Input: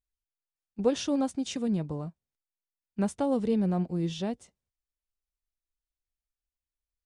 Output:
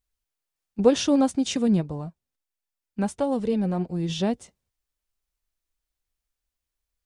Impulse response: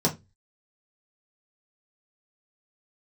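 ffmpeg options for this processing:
-filter_complex "[0:a]asplit=3[s0][s1][s2];[s0]afade=t=out:st=1.8:d=0.02[s3];[s1]flanger=delay=1.1:depth=2.8:regen=55:speed=1.5:shape=sinusoidal,afade=t=in:st=1.8:d=0.02,afade=t=out:st=4.08:d=0.02[s4];[s2]afade=t=in:st=4.08:d=0.02[s5];[s3][s4][s5]amix=inputs=3:normalize=0,volume=2.37"

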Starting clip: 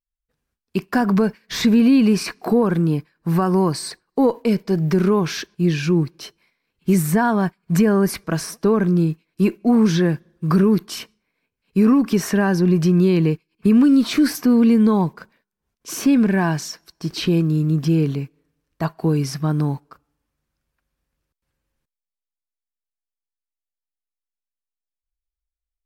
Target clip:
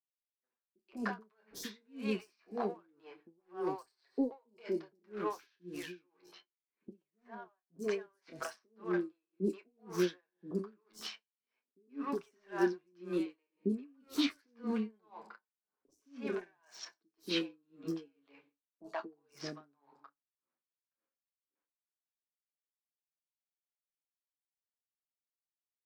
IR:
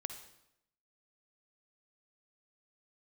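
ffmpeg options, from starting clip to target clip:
-filter_complex "[0:a]highpass=f=260:w=0.5412,highpass=f=260:w=1.3066,lowshelf=f=420:g=-3.5,alimiter=limit=0.15:level=0:latency=1:release=47,asplit=3[s0][s1][s2];[s0]afade=t=out:st=6.14:d=0.02[s3];[s1]acompressor=threshold=0.0158:ratio=10,afade=t=in:st=6.14:d=0.02,afade=t=out:st=7.6:d=0.02[s4];[s2]afade=t=in:st=7.6:d=0.02[s5];[s3][s4][s5]amix=inputs=3:normalize=0,flanger=delay=7:depth=4.1:regen=20:speed=0.25:shape=triangular,adynamicsmooth=sensitivity=8:basefreq=2100,asplit=2[s6][s7];[s7]adelay=28,volume=0.299[s8];[s6][s8]amix=inputs=2:normalize=0,acrossover=split=520|5900[s9][s10][s11];[s11]adelay=40[s12];[s10]adelay=130[s13];[s9][s13][s12]amix=inputs=3:normalize=0,asplit=2[s14][s15];[1:a]atrim=start_sample=2205[s16];[s15][s16]afir=irnorm=-1:irlink=0,volume=0.282[s17];[s14][s17]amix=inputs=2:normalize=0,aeval=exprs='val(0)*pow(10,-40*(0.5-0.5*cos(2*PI*1.9*n/s))/20)':c=same,volume=0.631"

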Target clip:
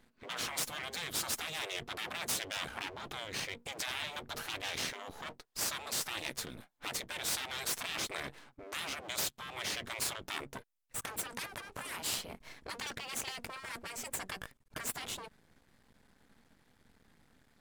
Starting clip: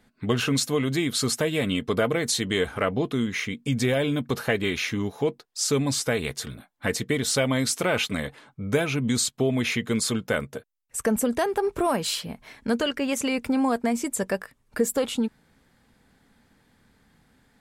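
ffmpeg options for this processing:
-af "aeval=exprs='max(val(0),0)':c=same,afftfilt=real='re*lt(hypot(re,im),0.0631)':imag='im*lt(hypot(re,im),0.0631)':win_size=1024:overlap=0.75,volume=0.841"

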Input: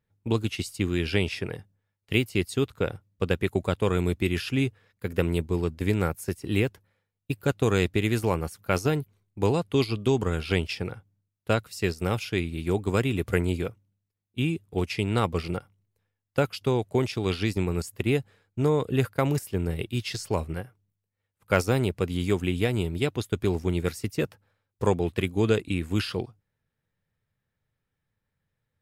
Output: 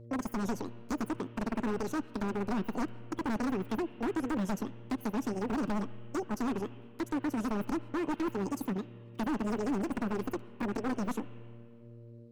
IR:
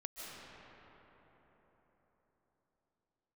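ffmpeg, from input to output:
-filter_complex "[0:a]lowshelf=f=250:g=5,acrossover=split=220[s0][s1];[s1]acompressor=threshold=0.01:ratio=6[s2];[s0][s2]amix=inputs=2:normalize=0,aeval=exprs='val(0)+0.00562*(sin(2*PI*50*n/s)+sin(2*PI*2*50*n/s)/2+sin(2*PI*3*50*n/s)/3+sin(2*PI*4*50*n/s)/4+sin(2*PI*5*50*n/s)/5)':c=same,flanger=delay=5.2:depth=5.1:regen=-66:speed=0.71:shape=sinusoidal,aeval=exprs='0.0447*(abs(mod(val(0)/0.0447+3,4)-2)-1)':c=same,asplit=2[s3][s4];[s4]lowpass=f=1200:t=q:w=6.4[s5];[1:a]atrim=start_sample=2205[s6];[s5][s6]afir=irnorm=-1:irlink=0,volume=0.133[s7];[s3][s7]amix=inputs=2:normalize=0,asetrate=103194,aresample=44100"

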